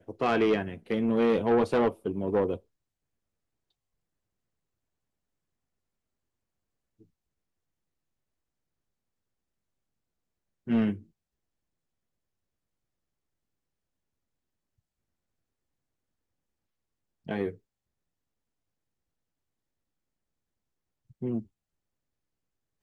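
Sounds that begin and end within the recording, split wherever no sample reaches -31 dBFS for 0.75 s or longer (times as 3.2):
10.68–10.94
17.29–17.49
21.23–21.39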